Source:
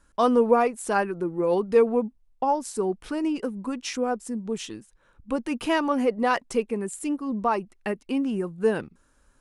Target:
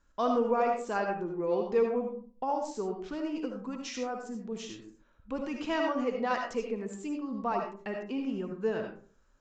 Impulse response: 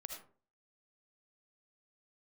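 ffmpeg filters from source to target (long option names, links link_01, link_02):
-filter_complex "[1:a]atrim=start_sample=2205[link_01];[0:a][link_01]afir=irnorm=-1:irlink=0,aresample=16000,aresample=44100,volume=-3dB"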